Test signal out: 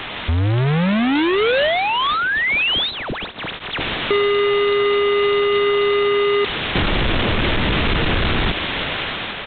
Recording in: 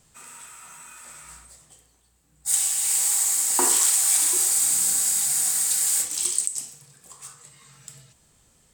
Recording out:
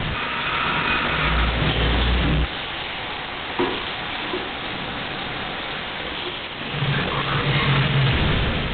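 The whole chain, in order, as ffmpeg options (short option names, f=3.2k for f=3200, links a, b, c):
-filter_complex "[0:a]aeval=exprs='val(0)+0.5*0.0841*sgn(val(0))':c=same,dynaudnorm=f=180:g=7:m=10.5dB,aresample=16000,asoftclip=type=hard:threshold=-17.5dB,aresample=44100,acrossover=split=530|1300[a][b][c];[a]acompressor=threshold=-24dB:ratio=4[d];[b]acompressor=threshold=-41dB:ratio=4[e];[c]acompressor=threshold=-25dB:ratio=4[f];[d][e][f]amix=inputs=3:normalize=0,volume=6.5dB" -ar 8000 -c:a adpcm_g726 -b:a 16k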